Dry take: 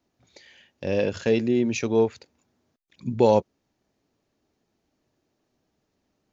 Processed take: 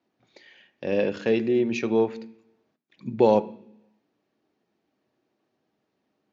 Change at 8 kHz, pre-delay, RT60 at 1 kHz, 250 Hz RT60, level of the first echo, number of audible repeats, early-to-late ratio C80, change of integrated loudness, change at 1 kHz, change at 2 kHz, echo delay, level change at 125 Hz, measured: n/a, 3 ms, 0.70 s, 0.90 s, none, none, 20.5 dB, -0.5 dB, -0.5 dB, 0.0 dB, none, -5.0 dB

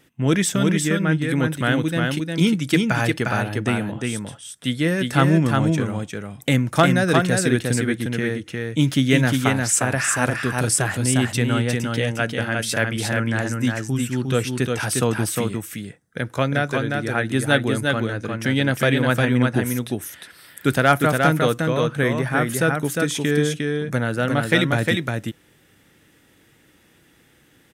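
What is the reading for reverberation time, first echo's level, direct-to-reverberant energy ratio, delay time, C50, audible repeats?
none, -3.5 dB, none, 0.355 s, none, 1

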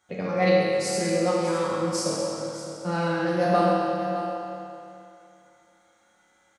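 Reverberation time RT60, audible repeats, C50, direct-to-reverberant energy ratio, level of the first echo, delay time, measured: 2.8 s, 1, -3.5 dB, -7.5 dB, -12.0 dB, 0.607 s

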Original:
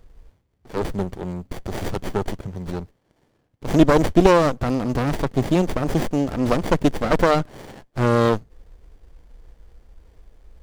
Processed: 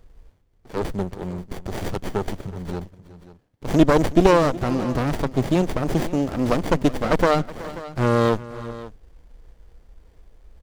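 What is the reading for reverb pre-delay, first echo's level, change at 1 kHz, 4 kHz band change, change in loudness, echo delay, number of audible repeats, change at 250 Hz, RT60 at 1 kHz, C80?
none, -18.0 dB, -1.0 dB, -1.0 dB, -1.0 dB, 0.371 s, 2, -1.0 dB, none, none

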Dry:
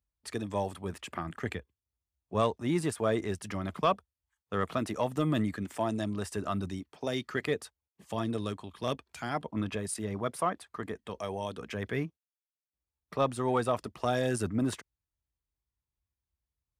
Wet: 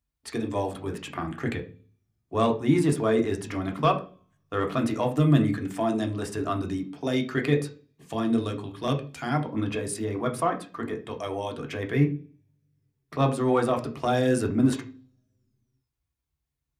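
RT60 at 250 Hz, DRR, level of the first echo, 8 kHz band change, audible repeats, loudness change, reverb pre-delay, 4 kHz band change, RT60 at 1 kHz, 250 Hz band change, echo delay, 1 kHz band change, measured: 0.55 s, 2.0 dB, none, +2.5 dB, none, +6.5 dB, 3 ms, +3.5 dB, 0.35 s, +8.0 dB, none, +4.5 dB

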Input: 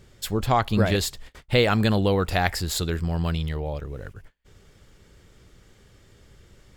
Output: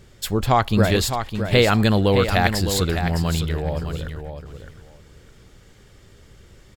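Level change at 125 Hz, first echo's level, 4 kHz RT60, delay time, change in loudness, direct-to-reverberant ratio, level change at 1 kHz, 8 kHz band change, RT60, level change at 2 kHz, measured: +4.0 dB, -8.0 dB, none, 0.61 s, +4.0 dB, none, +4.0 dB, +4.0 dB, none, +4.0 dB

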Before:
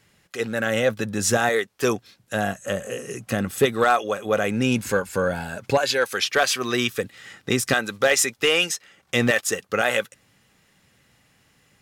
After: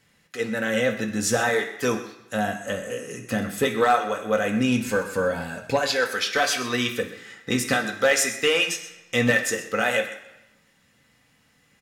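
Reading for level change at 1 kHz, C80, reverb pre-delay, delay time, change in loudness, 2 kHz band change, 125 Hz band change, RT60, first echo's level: -0.5 dB, 11.0 dB, 3 ms, 0.127 s, -1.0 dB, -0.5 dB, -2.5 dB, 0.95 s, -15.0 dB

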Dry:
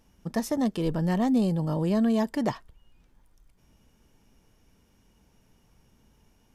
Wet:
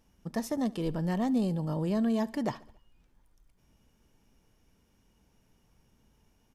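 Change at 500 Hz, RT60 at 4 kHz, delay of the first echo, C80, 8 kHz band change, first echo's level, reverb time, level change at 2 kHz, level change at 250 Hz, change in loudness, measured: -4.5 dB, none, 70 ms, none, n/a, -22.0 dB, none, -4.5 dB, -4.5 dB, -4.5 dB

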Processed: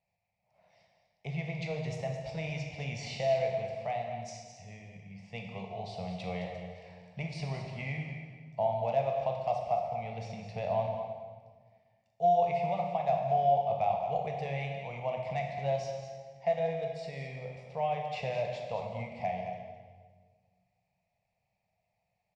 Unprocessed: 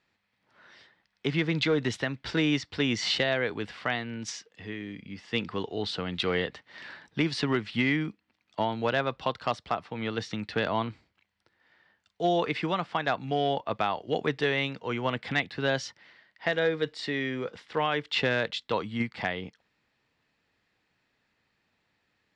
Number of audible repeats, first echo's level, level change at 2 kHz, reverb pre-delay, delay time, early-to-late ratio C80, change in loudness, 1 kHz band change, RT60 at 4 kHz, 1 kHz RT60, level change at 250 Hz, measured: 1, -10.5 dB, -13.0 dB, 17 ms, 0.215 s, 4.0 dB, -4.0 dB, +1.0 dB, 1.3 s, 1.4 s, -12.5 dB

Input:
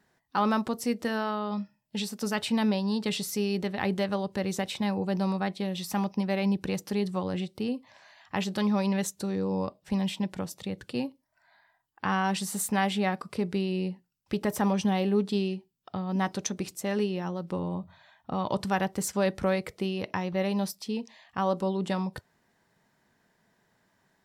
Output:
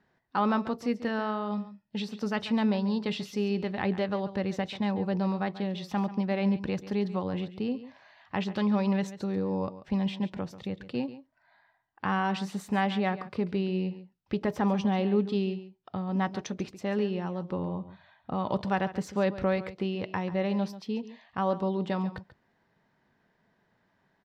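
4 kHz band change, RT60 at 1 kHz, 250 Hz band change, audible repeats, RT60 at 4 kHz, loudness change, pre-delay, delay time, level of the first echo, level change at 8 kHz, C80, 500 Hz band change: -4.0 dB, none, 0.0 dB, 1, none, -0.5 dB, none, 0.139 s, -14.5 dB, under -10 dB, none, -0.5 dB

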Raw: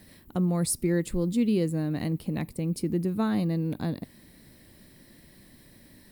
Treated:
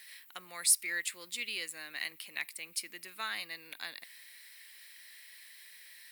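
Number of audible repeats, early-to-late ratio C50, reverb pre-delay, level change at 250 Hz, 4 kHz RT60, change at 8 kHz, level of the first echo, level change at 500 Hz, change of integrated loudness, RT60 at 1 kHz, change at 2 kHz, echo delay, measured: none, none, none, -33.0 dB, none, +4.0 dB, none, -22.5 dB, -6.5 dB, none, +6.5 dB, none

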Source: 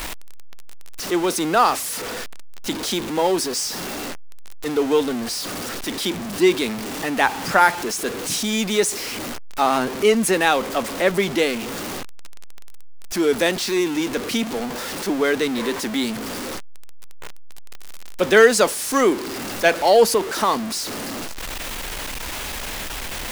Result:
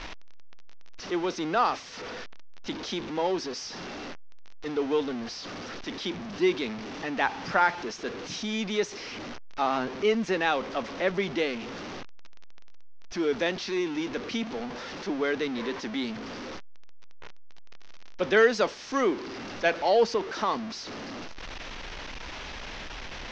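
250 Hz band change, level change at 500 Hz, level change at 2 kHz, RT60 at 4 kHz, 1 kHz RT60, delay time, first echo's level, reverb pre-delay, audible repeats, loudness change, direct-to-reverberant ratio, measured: -8.0 dB, -8.0 dB, -8.0 dB, none, none, none, none, none, none, -8.5 dB, none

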